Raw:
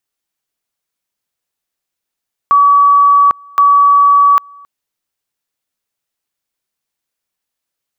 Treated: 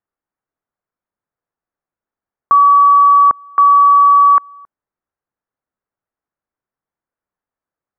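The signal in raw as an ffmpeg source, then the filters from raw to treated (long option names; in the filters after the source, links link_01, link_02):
-f lavfi -i "aevalsrc='pow(10,(-4.5-29.5*gte(mod(t,1.07),0.8))/20)*sin(2*PI*1140*t)':duration=2.14:sample_rate=44100"
-af "lowpass=frequency=1600:width=0.5412,lowpass=frequency=1600:width=1.3066"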